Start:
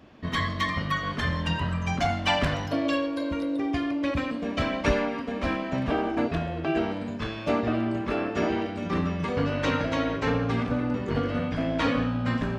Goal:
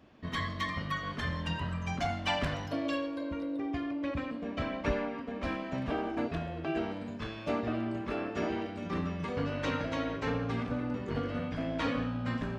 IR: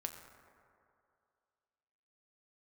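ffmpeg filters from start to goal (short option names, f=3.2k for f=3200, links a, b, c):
-filter_complex "[0:a]asettb=1/sr,asplit=3[a][b][c];[a]atrim=end=3.164[d];[b]atrim=start=3.16:end=5.43,asetpts=PTS-STARTPTS,afade=t=in:d=0.004:c=qsin,afade=t=out:st=2.266:d=0.004:c=qsin,highshelf=f=4.3k:g=-10.5[e];[c]atrim=start=5.426[f];[d][e]acrossfade=d=0.004:c1=hsin:c2=qsin[g];[g][f]acrossfade=d=0.004:c1=qsin:c2=hsin,volume=-7dB"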